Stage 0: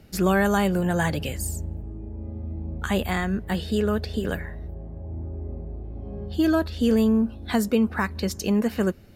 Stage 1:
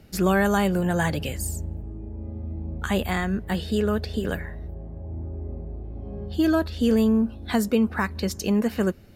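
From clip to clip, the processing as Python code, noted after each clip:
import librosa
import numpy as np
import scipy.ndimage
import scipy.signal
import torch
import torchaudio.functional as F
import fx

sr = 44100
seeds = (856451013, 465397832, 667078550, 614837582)

y = x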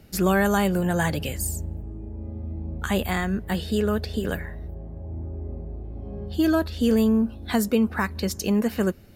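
y = fx.high_shelf(x, sr, hz=9400.0, db=6.0)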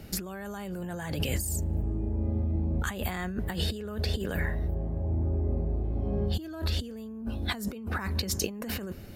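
y = fx.over_compress(x, sr, threshold_db=-32.0, ratio=-1.0)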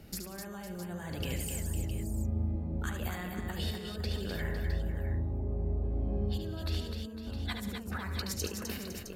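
y = fx.echo_multitap(x, sr, ms=(73, 142, 188, 254, 506, 661), db=(-6.5, -16.5, -15.5, -5.5, -12.5, -10.5))
y = F.gain(torch.from_numpy(y), -7.0).numpy()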